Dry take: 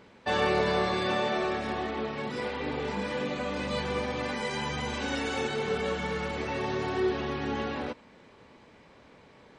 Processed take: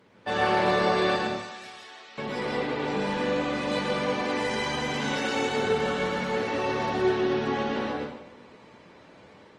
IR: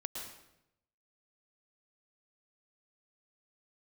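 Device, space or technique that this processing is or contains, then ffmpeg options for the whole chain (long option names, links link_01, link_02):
far-field microphone of a smart speaker: -filter_complex "[0:a]asettb=1/sr,asplit=3[link_01][link_02][link_03];[link_01]atrim=end=1.164[link_04];[link_02]atrim=start=1.16:end=2.18,asetpts=PTS-STARTPTS,afade=type=in:duration=0.004:curve=qsin,afade=type=out:start_time=1.016:duration=0.004:curve=qsin,aderivative[link_05];[link_03]atrim=start=2.176[link_06];[link_04][link_05]acrossfade=duration=0.004:curve1=hsin:curve2=qsin[link_07];[link_07][link_06]acrossfade=duration=0.004:curve1=qsin:curve2=hsin[link_08];[1:a]atrim=start_sample=2205[link_09];[link_08][link_09]afir=irnorm=-1:irlink=0,highpass=frequency=82:width=0.5412,highpass=frequency=82:width=1.3066,dynaudnorm=framelen=110:gausssize=5:maxgain=4dB" -ar 48000 -c:a libopus -b:a 24k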